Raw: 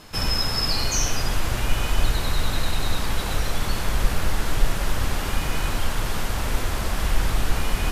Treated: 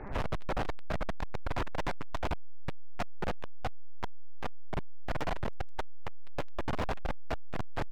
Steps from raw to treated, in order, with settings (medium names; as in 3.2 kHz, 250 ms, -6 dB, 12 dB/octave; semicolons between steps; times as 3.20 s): median filter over 9 samples; dynamic bell 1.1 kHz, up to +7 dB, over -48 dBFS, Q 0.94; LPC vocoder at 8 kHz pitch kept; gain riding; pitch shift -7.5 st; distance through air 330 m; feedback delay 80 ms, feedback 39%, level -14 dB; hard clipper -35.5 dBFS, distortion -5 dB; trim +6 dB